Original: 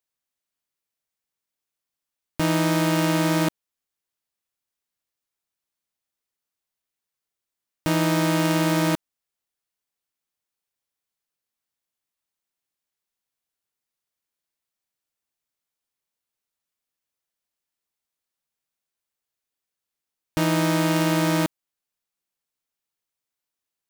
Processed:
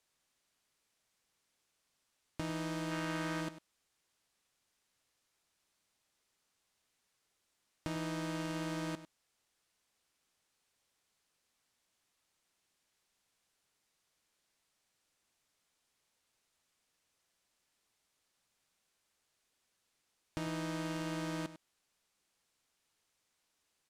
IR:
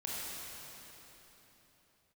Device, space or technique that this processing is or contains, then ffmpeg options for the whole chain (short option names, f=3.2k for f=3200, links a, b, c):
de-esser from a sidechain: -filter_complex "[0:a]asplit=2[a][b];[b]highpass=4.1k,apad=whole_len=1053934[c];[a][c]sidechaincompress=threshold=-55dB:ratio=8:attack=2.3:release=38,lowpass=9.4k,asettb=1/sr,asplit=3[d][e][f];[d]atrim=end=2.914[g];[e]atrim=start=2.91:end=3.41,asetpts=PTS-STARTPTS,afade=t=in:d=0.004:c=qsin,afade=t=out:st=0.496:d=0.004:c=qsin,equalizer=f=1.6k:t=o:w=1.4:g=6[h];[f]atrim=start=3.406[i];[g][h]acrossfade=d=0.004:c1=hsin:c2=qsin[j];[j][i]acrossfade=d=0.004:c1=qsin:c2=hsin,aecho=1:1:99:0.2,volume=9dB"